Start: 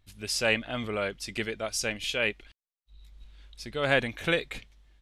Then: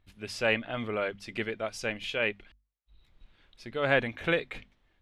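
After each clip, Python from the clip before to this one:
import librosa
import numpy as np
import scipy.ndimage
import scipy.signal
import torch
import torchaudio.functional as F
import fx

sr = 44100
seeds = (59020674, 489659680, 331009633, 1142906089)

y = fx.bass_treble(x, sr, bass_db=-1, treble_db=-14)
y = fx.hum_notches(y, sr, base_hz=50, count=5)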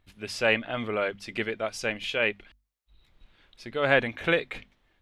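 y = fx.low_shelf(x, sr, hz=180.0, db=-4.0)
y = y * librosa.db_to_amplitude(3.5)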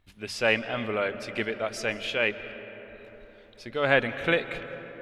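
y = fx.rev_freeverb(x, sr, rt60_s=4.9, hf_ratio=0.35, predelay_ms=105, drr_db=12.0)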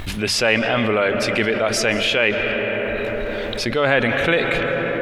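y = fx.env_flatten(x, sr, amount_pct=70)
y = y * librosa.db_to_amplitude(3.0)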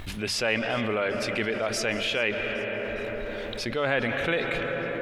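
y = fx.echo_thinned(x, sr, ms=408, feedback_pct=66, hz=420.0, wet_db=-23)
y = y * librosa.db_to_amplitude(-8.5)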